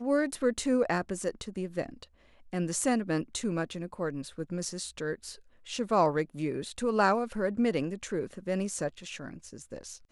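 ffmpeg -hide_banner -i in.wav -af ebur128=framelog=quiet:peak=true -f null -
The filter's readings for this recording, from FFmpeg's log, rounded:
Integrated loudness:
  I:         -31.2 LUFS
  Threshold: -41.8 LUFS
Loudness range:
  LRA:         3.7 LU
  Threshold: -51.6 LUFS
  LRA low:   -33.5 LUFS
  LRA high:  -29.8 LUFS
True peak:
  Peak:      -12.1 dBFS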